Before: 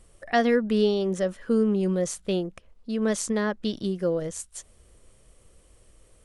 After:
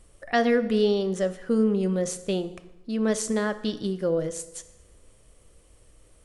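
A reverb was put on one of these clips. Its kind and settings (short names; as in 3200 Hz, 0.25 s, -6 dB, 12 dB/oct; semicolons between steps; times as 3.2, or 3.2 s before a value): FDN reverb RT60 1 s, low-frequency decay 1×, high-frequency decay 0.8×, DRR 10.5 dB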